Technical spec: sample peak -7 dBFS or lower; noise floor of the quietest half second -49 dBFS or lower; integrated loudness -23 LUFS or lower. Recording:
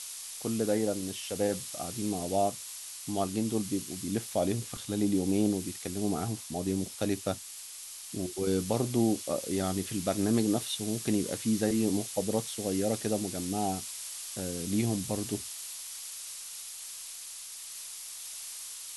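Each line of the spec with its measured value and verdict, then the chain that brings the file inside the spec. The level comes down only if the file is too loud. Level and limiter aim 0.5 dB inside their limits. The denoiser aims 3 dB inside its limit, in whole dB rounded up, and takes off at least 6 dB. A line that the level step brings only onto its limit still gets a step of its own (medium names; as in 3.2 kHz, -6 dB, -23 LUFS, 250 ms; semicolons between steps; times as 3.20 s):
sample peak -14.5 dBFS: pass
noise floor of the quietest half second -44 dBFS: fail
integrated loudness -32.0 LUFS: pass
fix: noise reduction 8 dB, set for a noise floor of -44 dBFS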